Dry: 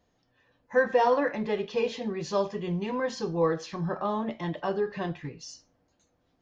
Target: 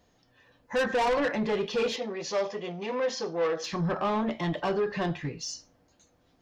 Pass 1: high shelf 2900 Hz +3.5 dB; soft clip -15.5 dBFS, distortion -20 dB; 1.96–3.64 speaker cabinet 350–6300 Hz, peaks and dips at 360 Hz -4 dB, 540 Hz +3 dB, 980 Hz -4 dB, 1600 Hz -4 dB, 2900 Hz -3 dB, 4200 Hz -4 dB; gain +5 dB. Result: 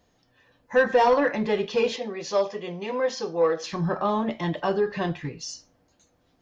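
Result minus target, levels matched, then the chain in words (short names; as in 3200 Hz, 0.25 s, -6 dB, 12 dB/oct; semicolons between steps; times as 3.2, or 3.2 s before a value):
soft clip: distortion -13 dB
high shelf 2900 Hz +3.5 dB; soft clip -27.5 dBFS, distortion -7 dB; 1.96–3.64 speaker cabinet 350–6300 Hz, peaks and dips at 360 Hz -4 dB, 540 Hz +3 dB, 980 Hz -4 dB, 1600 Hz -4 dB, 2900 Hz -3 dB, 4200 Hz -4 dB; gain +5 dB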